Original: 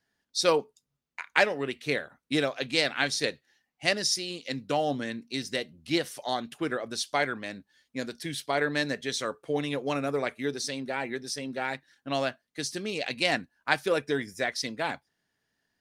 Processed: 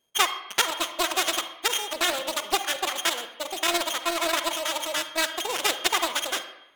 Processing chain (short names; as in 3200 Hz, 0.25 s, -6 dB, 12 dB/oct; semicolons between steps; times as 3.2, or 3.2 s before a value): sample sorter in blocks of 32 samples; in parallel at +1.5 dB: vocal rider 2 s; on the sum: plate-style reverb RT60 2.1 s, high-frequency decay 0.3×, pre-delay 85 ms, DRR 10 dB; speed mistake 33 rpm record played at 78 rpm; Doppler distortion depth 0.3 ms; gain -3.5 dB